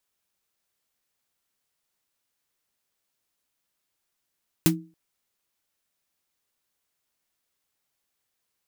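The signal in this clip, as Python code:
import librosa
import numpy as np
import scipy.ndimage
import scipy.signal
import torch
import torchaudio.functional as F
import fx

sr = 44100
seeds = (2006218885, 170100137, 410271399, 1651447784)

y = fx.drum_snare(sr, seeds[0], length_s=0.28, hz=170.0, second_hz=320.0, noise_db=-2, noise_from_hz=580.0, decay_s=0.34, noise_decay_s=0.11)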